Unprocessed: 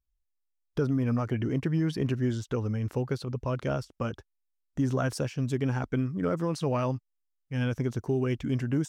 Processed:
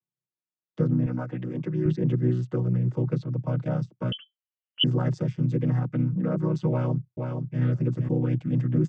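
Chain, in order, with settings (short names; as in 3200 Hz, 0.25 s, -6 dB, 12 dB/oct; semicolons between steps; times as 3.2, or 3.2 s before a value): chord vocoder major triad, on B2; 1.06–1.86 HPF 340 Hz 6 dB/oct; 4.12–4.84 inverted band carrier 3200 Hz; 6.7–7.61 echo throw 0.47 s, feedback 10%, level -5 dB; gain +5 dB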